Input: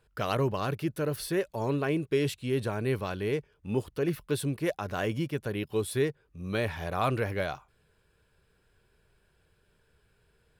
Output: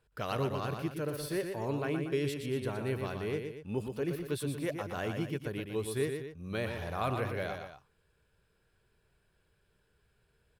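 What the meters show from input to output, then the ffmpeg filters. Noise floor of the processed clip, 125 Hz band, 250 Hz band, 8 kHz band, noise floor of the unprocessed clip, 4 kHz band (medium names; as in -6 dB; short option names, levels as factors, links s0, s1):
-73 dBFS, -4.5 dB, -4.5 dB, -4.5 dB, -69 dBFS, -4.5 dB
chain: -af "aecho=1:1:119.5|236.2:0.501|0.251,volume=0.531"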